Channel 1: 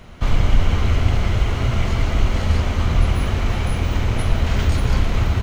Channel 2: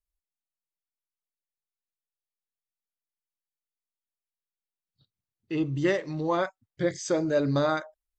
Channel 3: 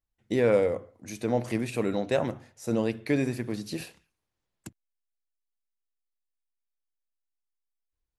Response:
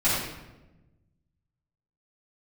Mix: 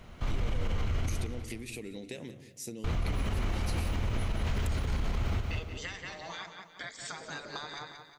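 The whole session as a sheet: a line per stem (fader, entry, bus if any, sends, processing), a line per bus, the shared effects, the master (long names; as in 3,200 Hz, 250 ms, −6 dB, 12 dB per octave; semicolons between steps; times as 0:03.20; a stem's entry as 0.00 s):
−8.5 dB, 0.00 s, muted 0:01.09–0:02.84, no bus, no send, echo send −6.5 dB, brickwall limiter −10.5 dBFS, peak gain reduction 7.5 dB
+3.0 dB, 0.00 s, bus A, no send, echo send −11.5 dB, gate on every frequency bin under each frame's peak −15 dB weak
+2.0 dB, 0.00 s, bus A, no send, echo send −23.5 dB, flat-topped bell 950 Hz −15.5 dB; downward compressor, threshold −28 dBFS, peak gain reduction 7.5 dB
bus A: 0.0 dB, spectral tilt +1.5 dB per octave; downward compressor 5 to 1, threshold −39 dBFS, peak gain reduction 12.5 dB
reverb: not used
echo: repeating echo 179 ms, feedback 42%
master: brickwall limiter −23 dBFS, peak gain reduction 8 dB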